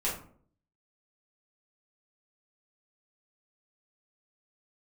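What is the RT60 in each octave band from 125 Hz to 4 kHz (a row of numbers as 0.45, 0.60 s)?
0.75, 0.70, 0.60, 0.50, 0.35, 0.30 s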